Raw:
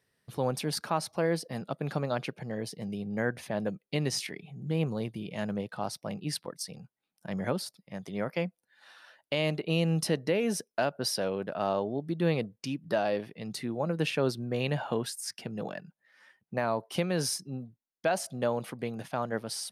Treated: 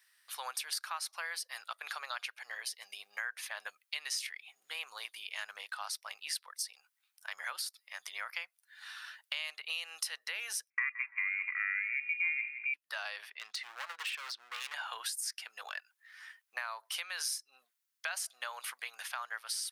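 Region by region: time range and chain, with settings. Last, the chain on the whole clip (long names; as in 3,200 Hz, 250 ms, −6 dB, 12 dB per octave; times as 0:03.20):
0:10.70–0:12.74: voice inversion scrambler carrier 2,600 Hz + spectral tilt +4.5 dB per octave + repeating echo 169 ms, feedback 21%, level −15.5 dB
0:13.30–0:14.74: low-pass filter 4,400 Hz + hard clipping −33.5 dBFS
whole clip: high-pass filter 1,200 Hz 24 dB per octave; high-shelf EQ 9,400 Hz +4.5 dB; downward compressor 3 to 1, threshold −46 dBFS; level +8 dB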